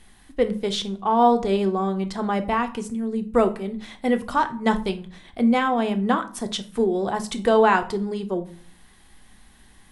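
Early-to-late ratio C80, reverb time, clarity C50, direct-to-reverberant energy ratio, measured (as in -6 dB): 20.5 dB, 0.50 s, 15.0 dB, 7.0 dB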